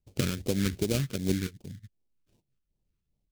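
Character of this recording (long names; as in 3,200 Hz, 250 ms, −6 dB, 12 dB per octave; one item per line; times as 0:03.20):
aliases and images of a low sample rate 1,900 Hz, jitter 20%
phaser sweep stages 2, 2.6 Hz, lowest notch 660–1,400 Hz
amplitude modulation by smooth noise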